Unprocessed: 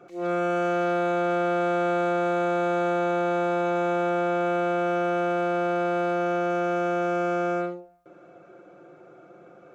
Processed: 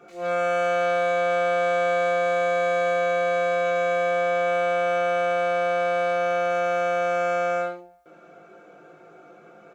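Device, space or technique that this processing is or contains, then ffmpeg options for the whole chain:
slapback doubling: -filter_complex "[0:a]asplit=3[a][b][c];[b]adelay=19,volume=-3dB[d];[c]adelay=67,volume=-7.5dB[e];[a][d][e]amix=inputs=3:normalize=0,tiltshelf=f=860:g=-3.5,aecho=1:1:4.4:0.34"

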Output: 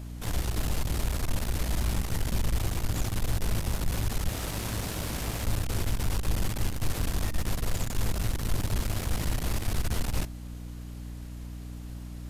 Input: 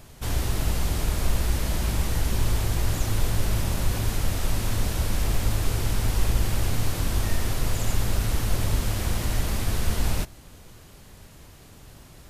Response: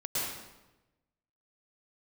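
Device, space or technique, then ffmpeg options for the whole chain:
valve amplifier with mains hum: -filter_complex "[0:a]asettb=1/sr,asplit=3[a][b][c];[a]atrim=end=4.284[d];[b]atrim=start=4.28:end=5.44,asetpts=PTS-STARTPTS,afade=t=in:d=0.004:c=qsin,afade=t=out:st=1.156:d=0.004:c=qsin,highpass=f=130:p=1[e];[c]atrim=start=5.436[f];[d][e]acrossfade=d=0.004:c1=hsin:c2=qsin[g];[g][f]acrossfade=d=0.004:c1=qsin:c2=hsin,aeval=exprs='(tanh(14.1*val(0)+0.55)-tanh(0.55))/14.1':c=same,aeval=exprs='val(0)+0.0126*(sin(2*PI*60*n/s)+sin(2*PI*2*60*n/s)/2+sin(2*PI*3*60*n/s)/3+sin(2*PI*4*60*n/s)/4+sin(2*PI*5*60*n/s)/5)':c=same"

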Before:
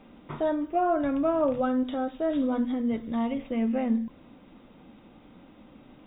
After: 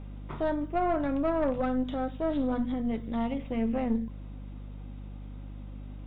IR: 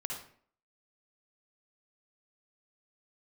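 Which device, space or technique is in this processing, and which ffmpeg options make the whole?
valve amplifier with mains hum: -af "aeval=exprs='(tanh(10*val(0)+0.55)-tanh(0.55))/10':c=same,aeval=exprs='val(0)+0.01*(sin(2*PI*50*n/s)+sin(2*PI*2*50*n/s)/2+sin(2*PI*3*50*n/s)/3+sin(2*PI*4*50*n/s)/4+sin(2*PI*5*50*n/s)/5)':c=same"

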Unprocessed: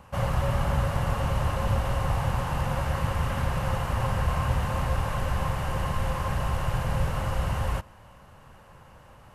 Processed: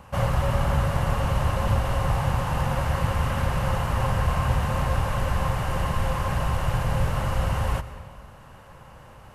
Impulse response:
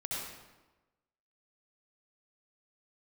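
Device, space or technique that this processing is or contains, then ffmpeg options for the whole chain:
compressed reverb return: -filter_complex "[0:a]asplit=2[a][b];[1:a]atrim=start_sample=2205[c];[b][c]afir=irnorm=-1:irlink=0,acompressor=threshold=-25dB:ratio=6,volume=-8dB[d];[a][d]amix=inputs=2:normalize=0,volume=1.5dB"

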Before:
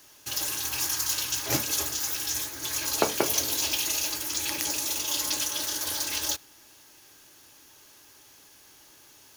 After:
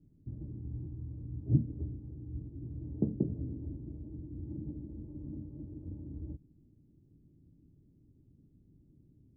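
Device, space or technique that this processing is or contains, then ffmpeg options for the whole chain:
the neighbour's flat through the wall: -af "lowpass=f=230:w=0.5412,lowpass=f=230:w=1.3066,equalizer=f=170:t=o:w=0.45:g=4,volume=8.5dB"

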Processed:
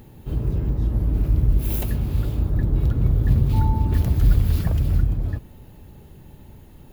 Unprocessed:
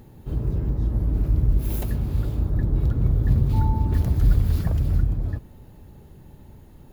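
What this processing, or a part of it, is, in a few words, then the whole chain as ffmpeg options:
presence and air boost: -af "equalizer=f=2.8k:t=o:w=0.86:g=4.5,highshelf=f=11k:g=6,volume=1.5dB"

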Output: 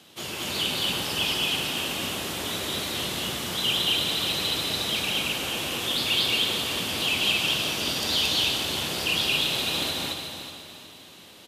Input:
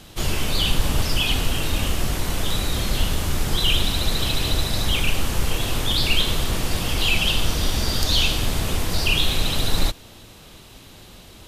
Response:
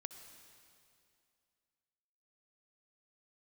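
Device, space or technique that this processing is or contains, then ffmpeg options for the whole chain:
stadium PA: -filter_complex "[0:a]highpass=49,highpass=220,lowshelf=f=120:g=3.5,equalizer=f=3.1k:t=o:w=0.76:g=4,aecho=1:1:177.8|224.5:0.355|1,aecho=1:1:368|736|1104|1472:0.335|0.121|0.0434|0.0156[a];[1:a]atrim=start_sample=2205[b];[a][b]afir=irnorm=-1:irlink=0,volume=-3dB"

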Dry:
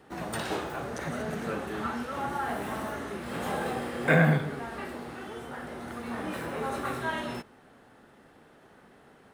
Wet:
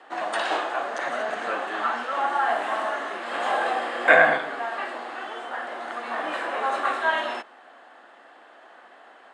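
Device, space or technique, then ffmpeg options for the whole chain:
phone speaker on a table: -af "highpass=f=350:w=0.5412,highpass=f=350:w=1.3066,equalizer=f=420:t=q:w=4:g=-9,equalizer=f=700:t=q:w=4:g=7,equalizer=f=1.1k:t=q:w=4:g=5,equalizer=f=1.7k:t=q:w=4:g=5,equalizer=f=3k:t=q:w=4:g=4,equalizer=f=5.7k:t=q:w=4:g=-7,lowpass=f=7.5k:w=0.5412,lowpass=f=7.5k:w=1.3066,volume=5.5dB"

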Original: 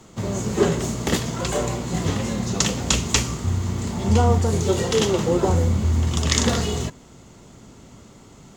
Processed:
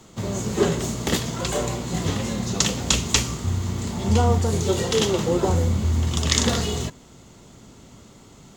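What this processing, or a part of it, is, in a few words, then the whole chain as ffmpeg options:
presence and air boost: -af "equalizer=f=3.7k:t=o:w=0.77:g=3,highshelf=f=11k:g=5.5,volume=-1.5dB"

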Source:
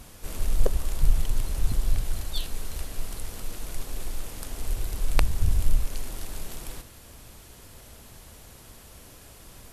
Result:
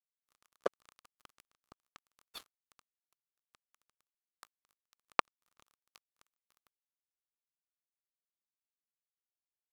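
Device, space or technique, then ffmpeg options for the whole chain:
pocket radio on a weak battery: -af "highpass=350,lowpass=4.1k,aeval=exprs='sgn(val(0))*max(abs(val(0))-0.0168,0)':c=same,equalizer=f=1.2k:t=o:w=0.5:g=10.5,volume=-2dB"

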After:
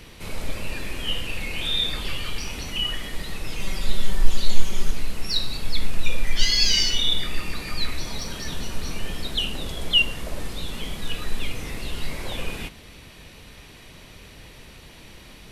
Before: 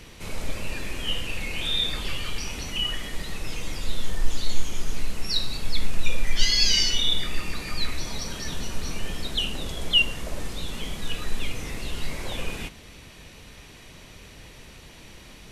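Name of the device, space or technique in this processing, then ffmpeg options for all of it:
exciter from parts: -filter_complex "[0:a]asplit=2[a][b];[b]highpass=f=5k:w=0.5412,highpass=f=5k:w=1.3066,asoftclip=type=tanh:threshold=-35.5dB,highpass=3.8k,volume=-9dB[c];[a][c]amix=inputs=2:normalize=0,asettb=1/sr,asplit=3[d][e][f];[d]atrim=end=3.594[g];[e]atrim=start=3.59:end=4.91,asetpts=PTS-STARTPTS,afade=t=in:d=0.004:c=qsin,afade=t=out:st=1.316:d=0.004:c=qsin,aecho=1:1:5.2:0.77,atrim=end_sample=58212[h];[f]atrim=start=4.906[i];[g][h]acrossfade=d=0.004:c1=hsin:c2=qsin[j];[j][i]acrossfade=d=0.004:c1=qsin:c2=hsin,volume=1dB"

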